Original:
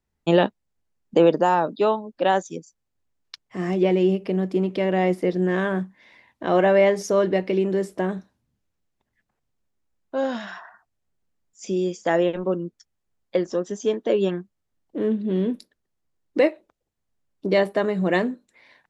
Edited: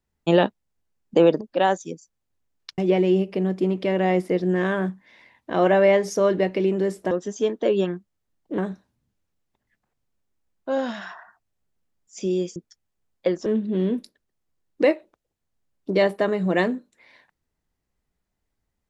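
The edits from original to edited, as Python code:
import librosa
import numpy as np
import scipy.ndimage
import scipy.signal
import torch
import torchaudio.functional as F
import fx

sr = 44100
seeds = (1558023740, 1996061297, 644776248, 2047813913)

y = fx.edit(x, sr, fx.cut(start_s=1.41, length_s=0.65),
    fx.cut(start_s=3.43, length_s=0.28),
    fx.cut(start_s=12.02, length_s=0.63),
    fx.move(start_s=13.55, length_s=1.47, to_s=8.04), tone=tone)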